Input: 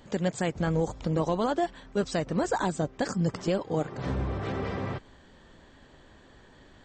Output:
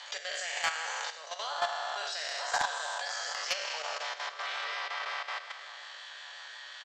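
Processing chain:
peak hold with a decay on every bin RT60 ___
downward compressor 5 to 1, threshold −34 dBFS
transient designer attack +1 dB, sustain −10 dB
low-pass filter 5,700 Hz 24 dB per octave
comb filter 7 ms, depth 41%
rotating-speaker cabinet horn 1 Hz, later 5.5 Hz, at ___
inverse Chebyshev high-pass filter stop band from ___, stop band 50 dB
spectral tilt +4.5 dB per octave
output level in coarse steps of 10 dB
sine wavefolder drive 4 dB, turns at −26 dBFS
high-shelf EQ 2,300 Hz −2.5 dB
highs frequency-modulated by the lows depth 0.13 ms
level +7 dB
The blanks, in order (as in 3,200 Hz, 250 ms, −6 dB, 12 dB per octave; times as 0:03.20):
2.58 s, 0:02.31, 280 Hz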